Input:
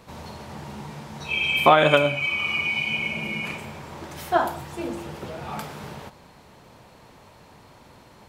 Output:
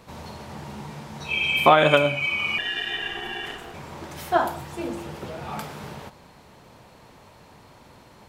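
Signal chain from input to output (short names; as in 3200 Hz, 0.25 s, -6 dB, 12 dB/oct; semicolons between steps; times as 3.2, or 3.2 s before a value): 2.58–3.74 ring modulator 570 Hz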